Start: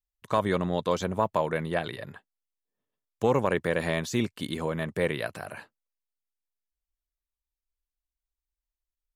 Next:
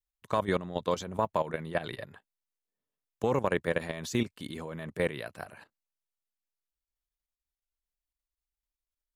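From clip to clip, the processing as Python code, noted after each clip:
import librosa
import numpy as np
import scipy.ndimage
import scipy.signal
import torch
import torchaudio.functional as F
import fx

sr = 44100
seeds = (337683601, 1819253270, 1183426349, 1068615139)

y = fx.level_steps(x, sr, step_db=13)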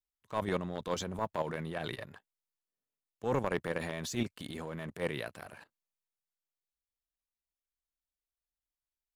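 y = fx.transient(x, sr, attack_db=-12, sustain_db=2)
y = fx.leveller(y, sr, passes=1)
y = y * 10.0 ** (-4.0 / 20.0)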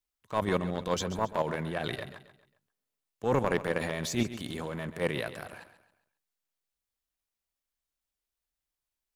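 y = fx.echo_feedback(x, sr, ms=135, feedback_pct=39, wet_db=-13)
y = y * 10.0 ** (4.5 / 20.0)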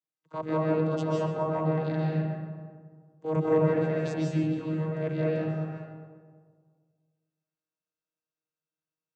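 y = fx.vocoder(x, sr, bands=16, carrier='saw', carrier_hz=157.0)
y = fx.rev_freeverb(y, sr, rt60_s=1.8, hf_ratio=0.35, predelay_ms=110, drr_db=-5.0)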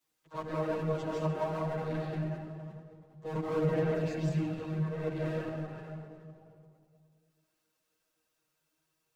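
y = fx.power_curve(x, sr, exponent=0.7)
y = fx.chorus_voices(y, sr, voices=4, hz=0.96, base_ms=11, depth_ms=3.0, mix_pct=60)
y = y + 10.0 ** (-16.0 / 20.0) * np.pad(y, (int(79 * sr / 1000.0), 0))[:len(y)]
y = y * 10.0 ** (-5.5 / 20.0)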